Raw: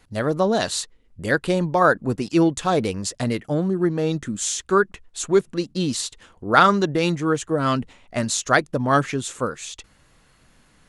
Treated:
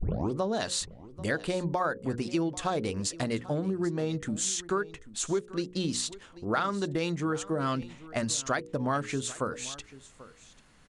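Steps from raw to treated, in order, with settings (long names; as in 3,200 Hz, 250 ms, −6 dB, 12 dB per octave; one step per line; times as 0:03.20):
turntable start at the beginning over 0.38 s
mains-hum notches 60/120/180/240/300/360/420/480/540 Hz
downward compressor 6 to 1, threshold −23 dBFS, peak gain reduction 13 dB
on a send: single-tap delay 789 ms −18.5 dB
on the sum: downsampling to 22,050 Hz
level −3 dB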